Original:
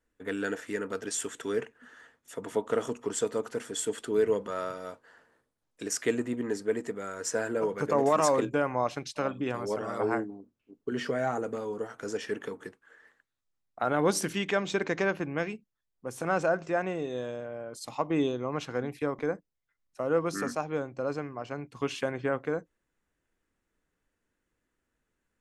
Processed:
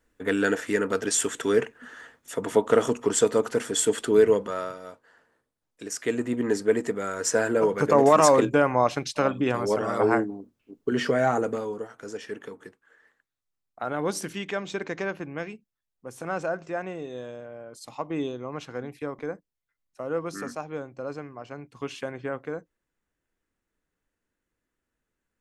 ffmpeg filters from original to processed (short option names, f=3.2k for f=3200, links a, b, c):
-af "volume=17dB,afade=t=out:st=4.09:d=0.7:silence=0.316228,afade=t=in:st=6:d=0.5:silence=0.375837,afade=t=out:st=11.42:d=0.47:silence=0.334965"